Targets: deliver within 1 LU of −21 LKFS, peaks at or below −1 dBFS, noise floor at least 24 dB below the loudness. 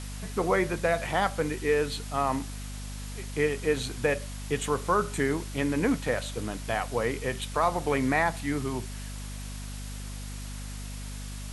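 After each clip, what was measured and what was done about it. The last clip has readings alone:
mains hum 50 Hz; hum harmonics up to 250 Hz; level of the hum −36 dBFS; background noise floor −38 dBFS; target noise floor −54 dBFS; integrated loudness −30.0 LKFS; sample peak −11.5 dBFS; target loudness −21.0 LKFS
→ hum removal 50 Hz, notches 5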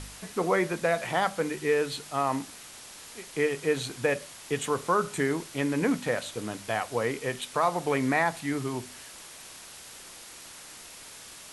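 mains hum none found; background noise floor −47 dBFS; target noise floor −53 dBFS
→ noise reduction from a noise print 6 dB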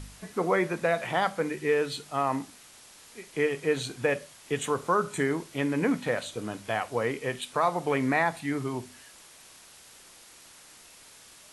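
background noise floor −53 dBFS; integrated loudness −29.0 LKFS; sample peak −12.0 dBFS; target loudness −21.0 LKFS
→ level +8 dB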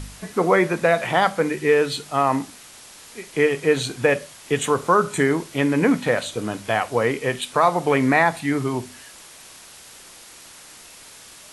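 integrated loudness −21.0 LKFS; sample peak −4.0 dBFS; background noise floor −45 dBFS

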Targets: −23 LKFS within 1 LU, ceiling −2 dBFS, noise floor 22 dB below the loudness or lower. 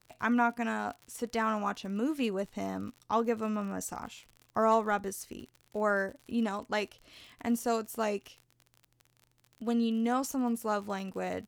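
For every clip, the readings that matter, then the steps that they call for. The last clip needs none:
crackle rate 47 per second; integrated loudness −32.5 LKFS; sample peak −16.5 dBFS; target loudness −23.0 LKFS
→ click removal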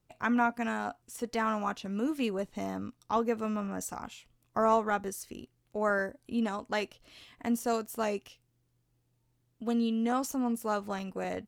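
crackle rate 0.26 per second; integrated loudness −32.5 LKFS; sample peak −14.0 dBFS; target loudness −23.0 LKFS
→ level +9.5 dB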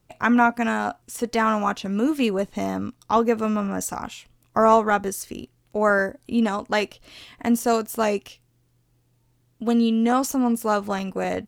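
integrated loudness −23.0 LKFS; sample peak −4.5 dBFS; background noise floor −65 dBFS

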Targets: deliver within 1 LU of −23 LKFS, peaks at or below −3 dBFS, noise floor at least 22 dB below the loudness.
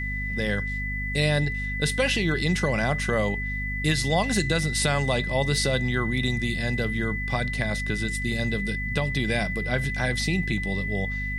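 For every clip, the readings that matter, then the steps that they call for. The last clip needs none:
mains hum 50 Hz; hum harmonics up to 250 Hz; level of the hum −29 dBFS; interfering tone 2,000 Hz; level of the tone −30 dBFS; integrated loudness −25.5 LKFS; sample peak −9.5 dBFS; target loudness −23.0 LKFS
→ hum removal 50 Hz, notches 5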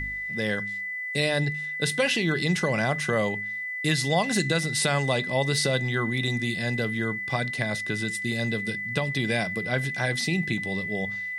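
mains hum none found; interfering tone 2,000 Hz; level of the tone −30 dBFS
→ notch filter 2,000 Hz, Q 30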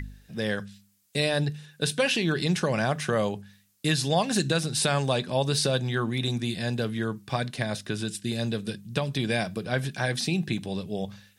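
interfering tone none found; integrated loudness −27.5 LKFS; sample peak −11.0 dBFS; target loudness −23.0 LKFS
→ level +4.5 dB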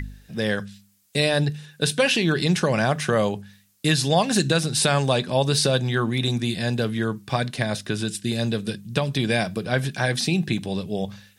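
integrated loudness −23.0 LKFS; sample peak −6.5 dBFS; background noise floor −58 dBFS

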